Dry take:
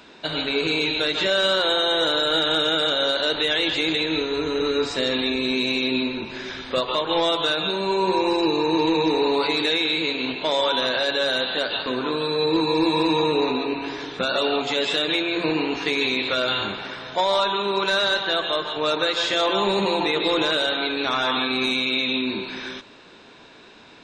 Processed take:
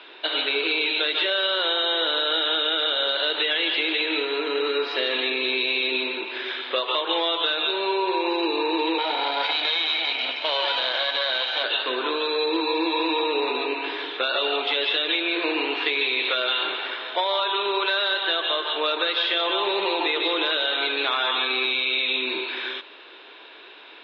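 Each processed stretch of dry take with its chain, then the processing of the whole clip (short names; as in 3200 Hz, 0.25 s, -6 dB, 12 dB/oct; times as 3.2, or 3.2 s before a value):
3.41–5.45 notch 3600 Hz, Q 14 + feedback echo 73 ms, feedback 54%, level -16 dB
8.98–11.64 minimum comb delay 1.3 ms + notch 1600 Hz, Q 17
whole clip: elliptic band-pass 340–3400 Hz, stop band 40 dB; high shelf 2300 Hz +11 dB; compressor, threshold -20 dBFS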